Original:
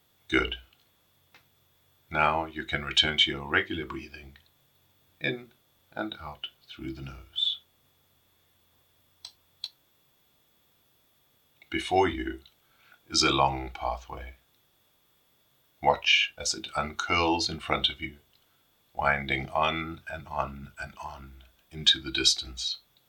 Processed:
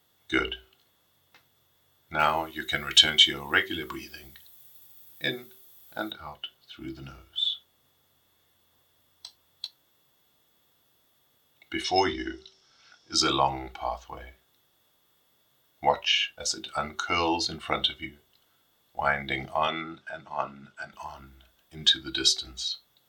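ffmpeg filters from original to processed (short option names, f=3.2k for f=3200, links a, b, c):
-filter_complex "[0:a]asettb=1/sr,asplit=3[a][b][c];[a]atrim=end=2.194[d];[b]atrim=start=2.19:end=6.12,asetpts=PTS-STARTPTS,afade=t=in:d=0.004:c=qsin,afade=t=out:st=3.926:d=0.004:c=qsin,aemphasis=mode=production:type=75kf[e];[c]atrim=start=6.116[f];[d][e]acrossfade=d=0.004:c1=hsin:c2=qsin[g];[g][f]acrossfade=d=0.004:c1=qsin:c2=hsin,asettb=1/sr,asplit=3[h][i][j];[h]atrim=end=11.844[k];[i]atrim=start=11.84:end=13.14,asetpts=PTS-STARTPTS,afade=t=in:d=0.004:c=qsin,afade=t=out:st=1.296:d=0.004:c=qsin,lowpass=f=5.4k:t=q:w=14[l];[j]atrim=start=13.136[m];[k][l]acrossfade=d=0.004:c1=hsin:c2=qsin[n];[n][m]acrossfade=d=0.004:c1=qsin:c2=hsin,asplit=3[o][p][q];[o]afade=t=out:st=19.67:d=0.02[r];[p]highpass=170,lowpass=6.4k,afade=t=in:st=19.67:d=0.02,afade=t=out:st=20.92:d=0.02[s];[q]afade=t=in:st=20.92:d=0.02[t];[r][s][t]amix=inputs=3:normalize=0,lowshelf=f=150:g=-6,bandreject=f=2.4k:w=8.9,bandreject=f=191.8:t=h:w=4,bandreject=f=383.6:t=h:w=4,bandreject=f=575.4:t=h:w=4"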